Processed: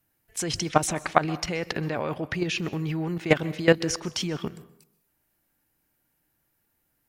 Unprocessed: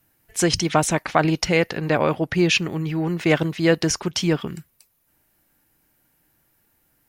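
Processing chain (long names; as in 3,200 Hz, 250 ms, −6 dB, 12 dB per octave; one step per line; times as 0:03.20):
output level in coarse steps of 15 dB
dense smooth reverb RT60 0.72 s, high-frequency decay 0.7×, pre-delay 115 ms, DRR 18 dB
level +1.5 dB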